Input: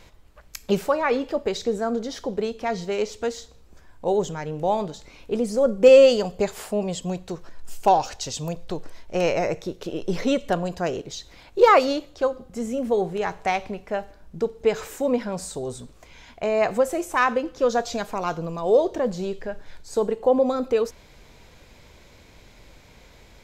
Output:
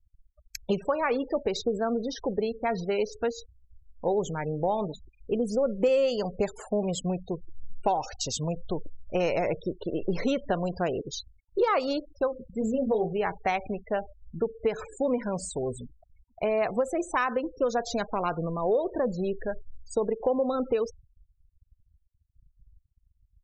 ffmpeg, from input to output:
-filter_complex "[0:a]asettb=1/sr,asplit=3[a][b][c];[a]atrim=end=12.594[d];[b]atrim=start=12.59:end=13.13,asetpts=PTS-STARTPTS,afade=t=in:d=0.004:c=qsin,afade=t=out:st=0.536:d=0.004:c=qsin,asplit=2[e][f];[f]adelay=23,volume=-4.5dB[g];[e][g]amix=inputs=2:normalize=0,atrim=end_sample=23814[h];[c]atrim=start=13.126[i];[d][h]acrossfade=d=0.004:c1=hsin:c2=qsin[j];[j][i]acrossfade=d=0.004:c1=qsin:c2=hsin,afftfilt=real='re*gte(hypot(re,im),0.0224)':imag='im*gte(hypot(re,im),0.0224)':win_size=1024:overlap=0.75,agate=range=-33dB:threshold=-45dB:ratio=3:detection=peak,acompressor=threshold=-23dB:ratio=4"

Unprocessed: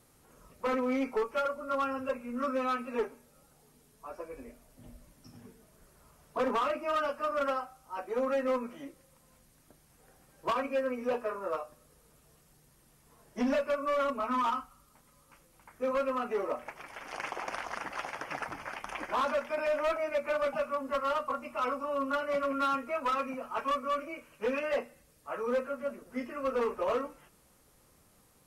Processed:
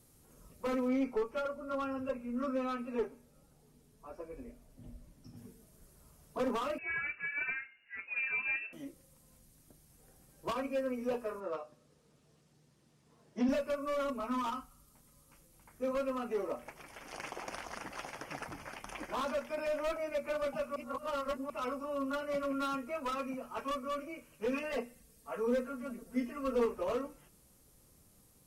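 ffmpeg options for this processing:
-filter_complex "[0:a]asettb=1/sr,asplit=3[a][b][c];[a]atrim=end=0.884[d];[b]atrim=start=0.88:end=5.37,asetpts=PTS-STARTPTS,afade=t=in:d=0.004:c=qsin,afade=t=out:st=4.486:d=0.004:c=qsin,aemphasis=mode=reproduction:type=cd[e];[c]atrim=start=5.366[f];[d][e]acrossfade=d=0.004:c1=hsin:c2=qsin[g];[g][f]acrossfade=d=0.004:c1=qsin:c2=hsin,asettb=1/sr,asplit=3[h][i][j];[h]atrim=end=6.784[k];[i]atrim=start=6.78:end=8.73,asetpts=PTS-STARTPTS,afade=t=in:d=0.004:c=qsin,afade=t=out:st=1.946:d=0.004:c=qsin,lowpass=f=2.5k:t=q:w=0.5098,lowpass=f=2.5k:t=q:w=0.6013,lowpass=f=2.5k:t=q:w=0.9,lowpass=f=2.5k:t=q:w=2.563,afreqshift=-2900[l];[j]atrim=start=8.726[m];[k][l]acrossfade=d=0.004:c1=hsin:c2=qsin[n];[n][m]acrossfade=d=0.004:c1=qsin:c2=hsin,asettb=1/sr,asplit=3[o][p][q];[o]atrim=end=11.404[r];[p]atrim=start=11.4:end=13.49,asetpts=PTS-STARTPTS,afade=t=in:d=0.004:c=qsin,afade=t=out:st=2.086:d=0.004:c=qsin,highpass=130,lowpass=4.9k[s];[q]atrim=start=13.486[t];[r][s]acrossfade=d=0.004:c1=hsin:c2=qsin[u];[u][t]acrossfade=d=0.004:c1=qsin:c2=hsin,asettb=1/sr,asplit=3[v][w][x];[v]atrim=end=24.514[y];[w]atrim=start=24.51:end=26.66,asetpts=PTS-STARTPTS,afade=t=in:d=0.004:c=qsin,afade=t=out:st=2.146:d=0.004:c=qsin,aecho=1:1:4.4:0.65,atrim=end_sample=94815[z];[x]atrim=start=26.656[aa];[y][z]acrossfade=d=0.004:c1=hsin:c2=qsin[ab];[ab][aa]acrossfade=d=0.004:c1=qsin:c2=hsin,asplit=3[ac][ad][ae];[ac]atrim=end=20.762[af];[ad]atrim=start=20.758:end=21.502,asetpts=PTS-STARTPTS,areverse[ag];[ae]atrim=start=21.498[ah];[af][ag]acrossfade=d=0.004:c1=hsin:c2=hsin[ai];[ai][ah]acrossfade=d=0.004:c1=hsin:c2=hsin,equalizer=f=1.3k:w=0.38:g=-9.5,volume=2dB"

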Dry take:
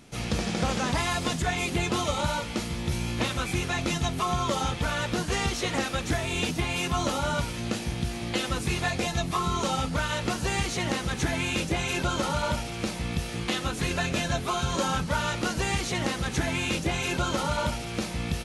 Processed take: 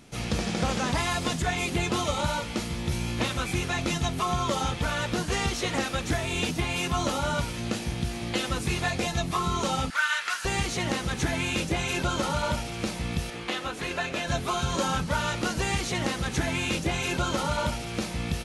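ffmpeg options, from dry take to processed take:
-filter_complex "[0:a]asettb=1/sr,asplit=3[a][b][c];[a]atrim=end=9.904[d];[b]atrim=start=9.9:end=10.45,asetpts=PTS-STARTPTS,afade=t=in:d=0.004:c=qsin,afade=t=out:st=0.546:d=0.004:c=qsin,highpass=f=1.5k:t=q:w=2.6[e];[c]atrim=start=10.446[f];[d][e]acrossfade=d=0.004:c1=hsin:c2=qsin[g];[g][f]acrossfade=d=0.004:c1=qsin:c2=hsin,asettb=1/sr,asplit=3[h][i][j];[h]atrim=end=13.304[k];[i]atrim=start=13.3:end=14.28,asetpts=PTS-STARTPTS,afade=t=in:d=0.004:c=qsin,afade=t=out:st=0.976:d=0.004:c=qsin,bass=f=250:g=-11,treble=f=4k:g=-7[l];[j]atrim=start=14.276[m];[k][l]acrossfade=d=0.004:c1=hsin:c2=qsin[n];[n][m]acrossfade=d=0.004:c1=qsin:c2=hsin"

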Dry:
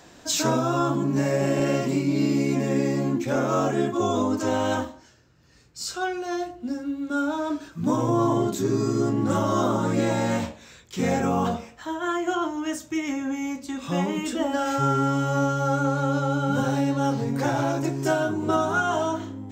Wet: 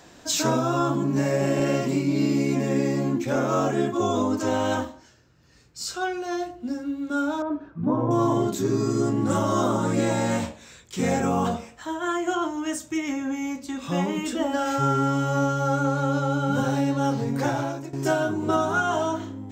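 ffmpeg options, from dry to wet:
-filter_complex "[0:a]asettb=1/sr,asplit=3[a][b][c];[a]atrim=end=7.424[d];[b]atrim=start=7.42:end=8.11,asetpts=PTS-STARTPTS,afade=t=in:d=0.004:c=qsin,afade=t=out:st=0.686:d=0.004:c=qsin,lowpass=1.2k[e];[c]atrim=start=8.106[f];[d][e]acrossfade=d=0.004:c1=hsin:c2=qsin[g];[g][f]acrossfade=d=0.004:c1=qsin:c2=hsin,asettb=1/sr,asplit=3[h][i][j];[h]atrim=end=8.904[k];[i]atrim=start=8.9:end=12.98,asetpts=PTS-STARTPTS,afade=t=in:d=0.004:c=qsin,afade=t=out:st=4.076:d=0.004:c=qsin,equalizer=f=8.5k:t=o:w=0.48:g=6[l];[j]atrim=start=12.976[m];[k][l]acrossfade=d=0.004:c1=hsin:c2=qsin[n];[n][m]acrossfade=d=0.004:c1=qsin:c2=hsin,asplit=2[o][p];[o]atrim=end=17.93,asetpts=PTS-STARTPTS,afade=t=out:st=17.46:d=0.47:silence=0.158489[q];[p]atrim=start=17.93,asetpts=PTS-STARTPTS,afade=t=in:d=0.004:c=hsin:silence=0.158489[r];[q][r]concat=n=2:v=0:a=1"

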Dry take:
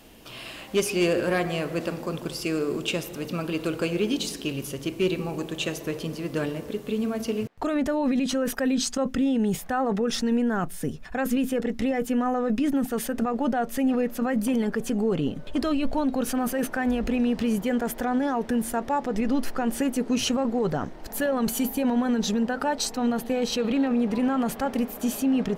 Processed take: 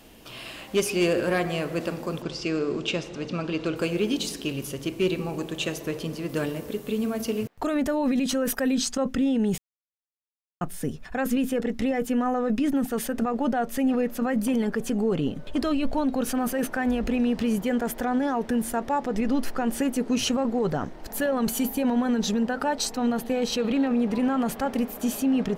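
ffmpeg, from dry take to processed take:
-filter_complex "[0:a]asettb=1/sr,asplit=3[a][b][c];[a]atrim=end=2.224[d];[b]atrim=start=2.22:end=3.76,asetpts=PTS-STARTPTS,afade=t=in:d=0.004:c=qsin,afade=t=out:st=1.536:d=0.004:c=qsin,lowpass=f=6.5k:w=0.5412,lowpass=f=6.5k:w=1.3066[e];[c]atrim=start=3.756[f];[d][e]acrossfade=d=0.004:c1=hsin:c2=qsin[g];[g][f]acrossfade=d=0.004:c1=qsin:c2=hsin,asettb=1/sr,asplit=3[h][i][j];[h]atrim=end=6.294[k];[i]atrim=start=6.29:end=8.8,asetpts=PTS-STARTPTS,afade=t=in:d=0.004:c=qsin,afade=t=out:st=2.506:d=0.004:c=qsin,highshelf=f=10k:g=9.5[l];[j]atrim=start=8.796[m];[k][l]acrossfade=d=0.004:c1=hsin:c2=qsin[n];[n][m]acrossfade=d=0.004:c1=qsin:c2=hsin,asplit=3[o][p][q];[o]atrim=end=9.58,asetpts=PTS-STARTPTS,afade=t=out:st=9.576:d=0.004:c=hsin[r];[p]atrim=start=9.58:end=10.61,asetpts=PTS-STARTPTS,volume=0[s];[q]atrim=start=10.61,asetpts=PTS-STARTPTS,afade=t=in:d=0.004:c=hsin[t];[r][s][t]concat=n=3:v=0:a=1"

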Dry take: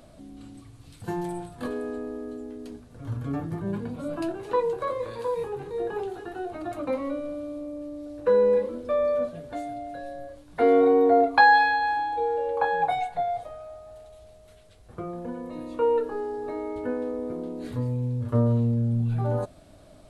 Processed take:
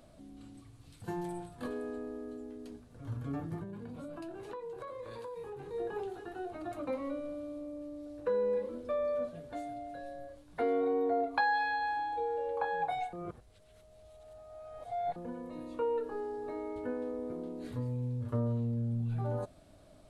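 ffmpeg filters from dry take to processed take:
-filter_complex "[0:a]asettb=1/sr,asplit=3[a][b][c];[a]atrim=end=3.634[d];[b]atrim=start=3.63:end=5.66,asetpts=PTS-STARTPTS,afade=t=in:d=0.004:c=qsin,afade=t=out:st=2.026:d=0.004:c=qsin,acompressor=threshold=-33dB:ratio=6:attack=3.2:release=140:knee=1:detection=peak[e];[c]atrim=start=5.656[f];[d][e]acrossfade=d=0.004:c1=hsin:c2=qsin[g];[g][f]acrossfade=d=0.004:c1=qsin:c2=hsin,asplit=3[h][i][j];[h]atrim=end=13.132[k];[i]atrim=start=13.128:end=15.162,asetpts=PTS-STARTPTS,areverse[l];[j]atrim=start=15.158[m];[k][l]acrossfade=d=0.004:c1=hsin:c2=hsin[n];[n][m]acrossfade=d=0.004:c1=hsin:c2=hsin,acompressor=threshold=-24dB:ratio=2,volume=-7dB"

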